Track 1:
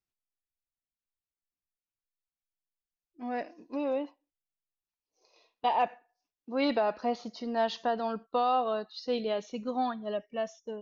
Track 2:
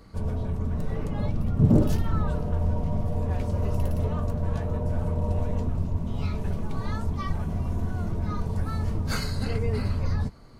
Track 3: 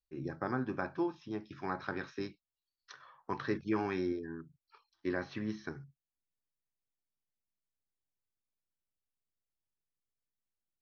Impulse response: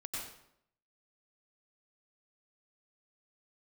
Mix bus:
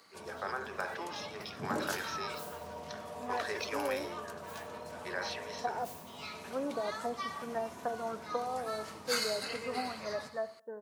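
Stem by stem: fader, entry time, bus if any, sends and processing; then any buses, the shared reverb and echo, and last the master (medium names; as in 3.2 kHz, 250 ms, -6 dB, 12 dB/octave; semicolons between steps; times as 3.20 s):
+1.5 dB, 0.00 s, no send, echo send -16.5 dB, low-pass that closes with the level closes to 520 Hz, closed at -25.5 dBFS; rippled Chebyshev low-pass 1.9 kHz, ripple 3 dB; bass shelf 490 Hz -6 dB
-6.0 dB, 0.00 s, send -7 dB, no echo send, frequency weighting A
0.0 dB, 0.00 s, no send, no echo send, steep high-pass 390 Hz 72 dB/octave; decay stretcher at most 73 dB/s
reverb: on, RT60 0.75 s, pre-delay 86 ms
echo: feedback delay 79 ms, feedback 36%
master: tilt EQ +2.5 dB/octave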